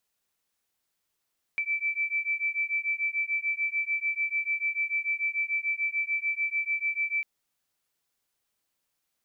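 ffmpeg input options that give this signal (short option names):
-f lavfi -i "aevalsrc='0.0335*(sin(2*PI*2320*t)+sin(2*PI*2326.8*t))':d=5.65:s=44100"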